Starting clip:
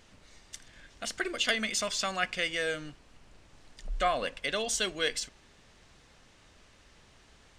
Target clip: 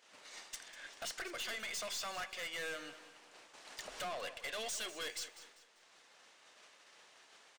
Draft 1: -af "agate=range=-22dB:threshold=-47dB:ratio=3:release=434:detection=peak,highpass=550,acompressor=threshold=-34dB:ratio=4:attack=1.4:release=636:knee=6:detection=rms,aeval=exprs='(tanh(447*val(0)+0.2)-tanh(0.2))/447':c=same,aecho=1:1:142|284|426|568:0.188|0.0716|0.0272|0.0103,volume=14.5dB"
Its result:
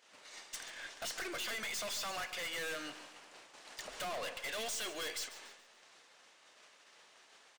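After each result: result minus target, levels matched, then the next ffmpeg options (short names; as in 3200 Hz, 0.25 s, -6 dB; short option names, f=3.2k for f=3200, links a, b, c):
compressor: peak gain reduction -7.5 dB; echo 55 ms early
-af "agate=range=-22dB:threshold=-47dB:ratio=3:release=434:detection=peak,highpass=550,acompressor=threshold=-44dB:ratio=4:attack=1.4:release=636:knee=6:detection=rms,aeval=exprs='(tanh(447*val(0)+0.2)-tanh(0.2))/447':c=same,aecho=1:1:142|284|426|568:0.188|0.0716|0.0272|0.0103,volume=14.5dB"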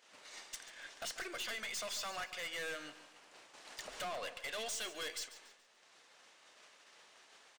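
echo 55 ms early
-af "agate=range=-22dB:threshold=-47dB:ratio=3:release=434:detection=peak,highpass=550,acompressor=threshold=-44dB:ratio=4:attack=1.4:release=636:knee=6:detection=rms,aeval=exprs='(tanh(447*val(0)+0.2)-tanh(0.2))/447':c=same,aecho=1:1:197|394|591|788:0.188|0.0716|0.0272|0.0103,volume=14.5dB"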